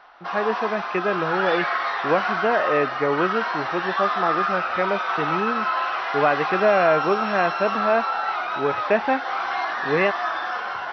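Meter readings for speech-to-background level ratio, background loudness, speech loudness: 1.0 dB, -25.0 LUFS, -24.0 LUFS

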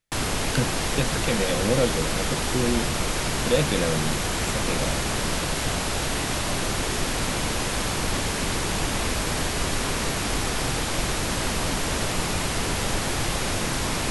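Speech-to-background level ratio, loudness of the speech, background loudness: -2.5 dB, -28.0 LUFS, -25.5 LUFS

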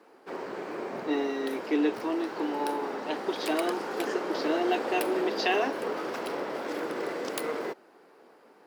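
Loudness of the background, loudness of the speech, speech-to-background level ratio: -34.5 LUFS, -31.0 LUFS, 3.5 dB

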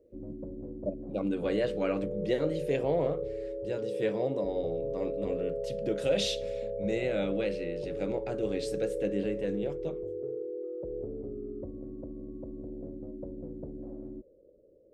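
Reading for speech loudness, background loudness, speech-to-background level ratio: -33.5 LUFS, -37.5 LUFS, 4.0 dB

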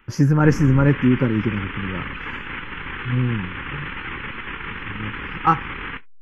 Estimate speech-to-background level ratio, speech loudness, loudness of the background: 10.5 dB, -20.0 LUFS, -30.5 LUFS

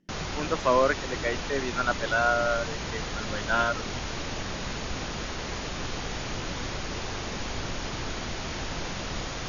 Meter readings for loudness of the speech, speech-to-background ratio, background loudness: -27.5 LUFS, 6.0 dB, -33.5 LUFS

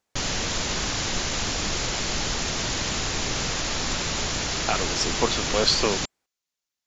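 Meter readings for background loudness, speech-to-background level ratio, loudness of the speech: -26.0 LUFS, 0.5 dB, -25.5 LUFS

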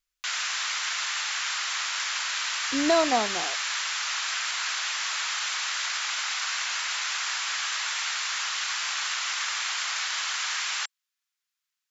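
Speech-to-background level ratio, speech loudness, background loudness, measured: 1.5 dB, -26.0 LUFS, -27.5 LUFS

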